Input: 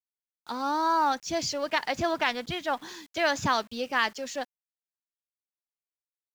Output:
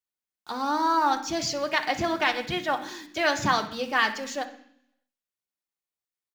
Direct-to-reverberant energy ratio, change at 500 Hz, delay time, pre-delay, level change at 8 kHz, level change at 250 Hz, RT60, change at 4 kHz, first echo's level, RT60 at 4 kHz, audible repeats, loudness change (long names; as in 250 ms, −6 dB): 4.5 dB, +1.0 dB, 64 ms, 3 ms, +1.5 dB, +3.0 dB, 0.70 s, +2.0 dB, −16.5 dB, 0.85 s, 3, +2.0 dB